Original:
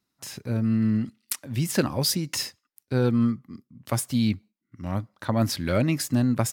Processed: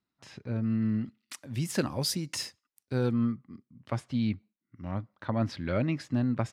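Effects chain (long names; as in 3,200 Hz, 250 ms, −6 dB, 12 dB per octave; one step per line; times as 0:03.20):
low-pass filter 3,600 Hz 12 dB per octave, from 0:01.33 11,000 Hz, from 0:03.13 3,200 Hz
level −5.5 dB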